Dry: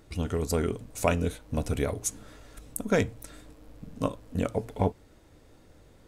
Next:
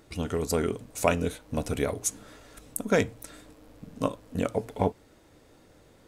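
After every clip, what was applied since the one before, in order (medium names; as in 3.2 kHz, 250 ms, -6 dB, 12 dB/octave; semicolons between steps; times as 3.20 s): bass shelf 100 Hz -10.5 dB; trim +2 dB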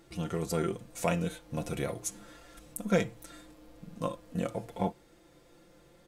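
comb 5.8 ms, depth 63%; harmonic-percussive split harmonic +7 dB; trim -8.5 dB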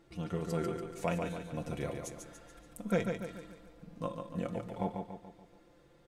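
treble shelf 5.1 kHz -10 dB; on a send: feedback delay 143 ms, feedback 47%, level -5.5 dB; on the sum: trim -4 dB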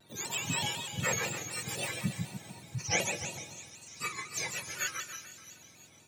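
spectrum inverted on a logarithmic axis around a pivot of 1.1 kHz; feedback echo behind a high-pass 329 ms, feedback 53%, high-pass 3.6 kHz, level -10 dB; vibrato with a chosen wave square 4 Hz, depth 100 cents; trim +6.5 dB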